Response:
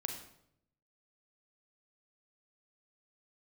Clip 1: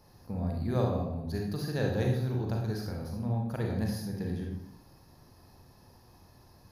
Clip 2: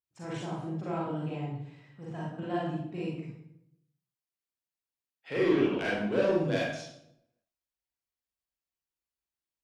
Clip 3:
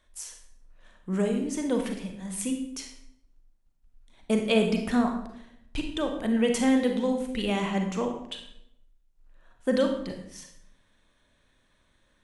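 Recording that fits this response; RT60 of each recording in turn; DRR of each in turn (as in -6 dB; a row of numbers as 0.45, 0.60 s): 3; 0.75, 0.75, 0.75 s; -0.5, -6.5, 3.5 dB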